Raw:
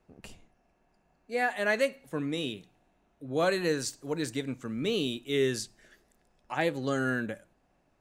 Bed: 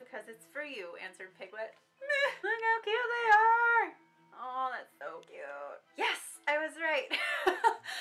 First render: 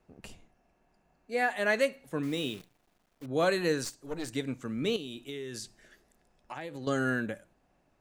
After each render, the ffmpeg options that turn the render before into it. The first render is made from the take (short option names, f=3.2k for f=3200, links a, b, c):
-filter_complex "[0:a]asettb=1/sr,asplit=3[a][b][c];[a]atrim=end=2.234[d];[b]atrim=start=2.23:end=3.26,asetpts=PTS-STARTPTS,afade=t=in:d=0.004:c=qsin,afade=t=out:st=1.026:d=0.004:c=qsin,acrusher=bits=9:dc=4:mix=0:aa=0.000001[e];[c]atrim=start=3.256[f];[d][e]acrossfade=d=0.004:c1=hsin:c2=qsin[g];[g][f]acrossfade=d=0.004:c1=qsin:c2=hsin,asettb=1/sr,asplit=3[h][i][j];[h]atrim=end=3.844[k];[i]atrim=start=3.84:end=4.33,asetpts=PTS-STARTPTS,afade=t=in:d=0.004:c=qsin,afade=t=out:st=0.486:d=0.004:c=qsin,aeval=exprs='(tanh(25.1*val(0)+0.7)-tanh(0.7))/25.1':c=same[l];[j]atrim=start=4.326[m];[k][l]acrossfade=d=0.004:c1=hsin:c2=qsin[n];[n][m]acrossfade=d=0.004:c1=qsin:c2=hsin,asettb=1/sr,asplit=3[o][p][q];[o]atrim=end=4.964[r];[p]atrim=start=4.96:end=6.87,asetpts=PTS-STARTPTS,afade=t=in:d=0.004:c=qsin,afade=t=out:st=1.906:d=0.004:c=qsin,acompressor=threshold=-35dB:ratio=12:attack=3.2:release=140:knee=1:detection=peak[s];[q]atrim=start=6.866[t];[r][s]acrossfade=d=0.004:c1=hsin:c2=qsin[u];[u][t]acrossfade=d=0.004:c1=qsin:c2=hsin"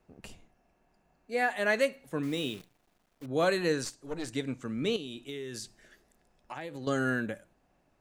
-filter_complex "[0:a]asettb=1/sr,asplit=3[a][b][c];[a]atrim=end=3.574[d];[b]atrim=start=3.57:end=5.29,asetpts=PTS-STARTPTS,afade=t=in:d=0.004:c=qsin,afade=t=out:st=1.716:d=0.004:c=qsin,lowpass=11k[e];[c]atrim=start=5.286[f];[d][e]acrossfade=d=0.004:c1=hsin:c2=qsin[g];[g][f]acrossfade=d=0.004:c1=qsin:c2=hsin"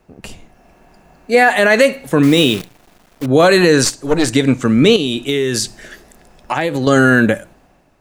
-af "dynaudnorm=f=110:g=9:m=9dB,alimiter=level_in=13.5dB:limit=-1dB:release=50:level=0:latency=1"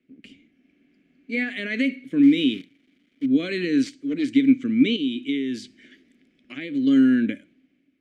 -filter_complex "[0:a]asplit=3[a][b][c];[a]bandpass=f=270:t=q:w=8,volume=0dB[d];[b]bandpass=f=2.29k:t=q:w=8,volume=-6dB[e];[c]bandpass=f=3.01k:t=q:w=8,volume=-9dB[f];[d][e][f]amix=inputs=3:normalize=0"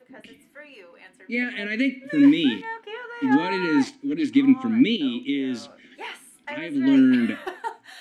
-filter_complex "[1:a]volume=-4dB[a];[0:a][a]amix=inputs=2:normalize=0"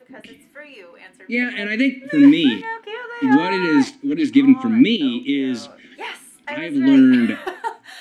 -af "volume=5dB"